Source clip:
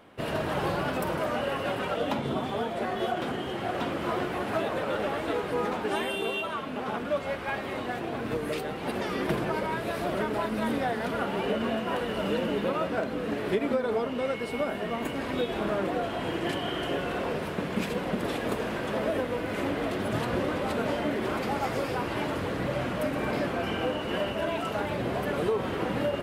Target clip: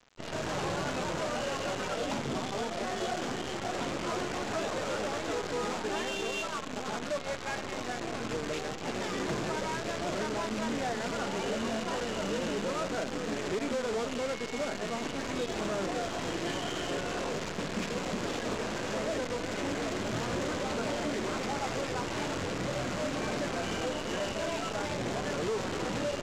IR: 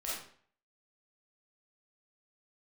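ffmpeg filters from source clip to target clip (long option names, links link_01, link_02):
-af "dynaudnorm=framelen=230:gausssize=3:maxgain=6.5dB,aresample=16000,acrusher=bits=5:dc=4:mix=0:aa=0.000001,aresample=44100,asoftclip=type=tanh:threshold=-19dB,volume=-8dB"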